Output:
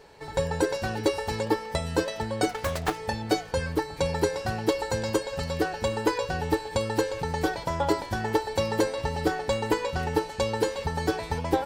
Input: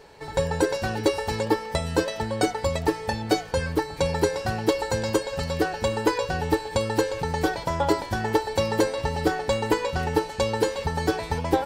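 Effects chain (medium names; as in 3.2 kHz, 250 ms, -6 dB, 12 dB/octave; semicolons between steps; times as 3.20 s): 2.49–2.98 s: self-modulated delay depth 0.69 ms; trim -2.5 dB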